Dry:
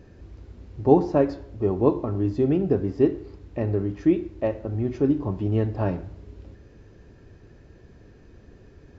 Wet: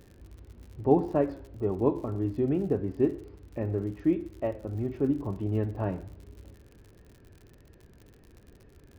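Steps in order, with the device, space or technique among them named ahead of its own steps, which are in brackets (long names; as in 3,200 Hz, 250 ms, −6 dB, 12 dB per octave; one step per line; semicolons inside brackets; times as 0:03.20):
lo-fi chain (low-pass filter 3,100 Hz 12 dB per octave; tape wow and flutter; surface crackle 78 per second −38 dBFS)
level −5.5 dB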